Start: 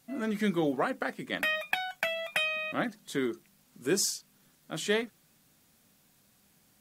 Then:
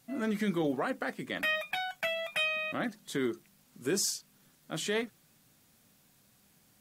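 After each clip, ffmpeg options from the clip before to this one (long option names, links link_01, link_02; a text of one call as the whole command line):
ffmpeg -i in.wav -af "equalizer=frequency=120:width=5.1:gain=4.5,alimiter=limit=-21.5dB:level=0:latency=1:release=11" out.wav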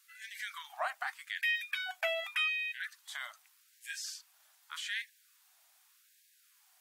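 ffmpeg -i in.wav -filter_complex "[0:a]acrossover=split=3800[link_01][link_02];[link_02]acompressor=threshold=-45dB:ratio=4:attack=1:release=60[link_03];[link_01][link_03]amix=inputs=2:normalize=0,afftfilt=real='re*gte(b*sr/1024,580*pow(1600/580,0.5+0.5*sin(2*PI*0.84*pts/sr)))':imag='im*gte(b*sr/1024,580*pow(1600/580,0.5+0.5*sin(2*PI*0.84*pts/sr)))':win_size=1024:overlap=0.75" out.wav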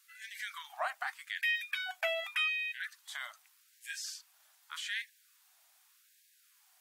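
ffmpeg -i in.wav -af anull out.wav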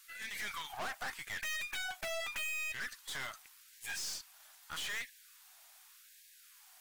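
ffmpeg -i in.wav -af "aeval=exprs='(tanh(200*val(0)+0.45)-tanh(0.45))/200':channel_layout=same,volume=8.5dB" out.wav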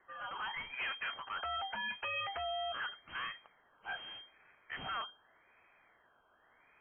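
ffmpeg -i in.wav -af "lowpass=frequency=2700:width_type=q:width=0.5098,lowpass=frequency=2700:width_type=q:width=0.6013,lowpass=frequency=2700:width_type=q:width=0.9,lowpass=frequency=2700:width_type=q:width=2.563,afreqshift=-3200,volume=1.5dB" out.wav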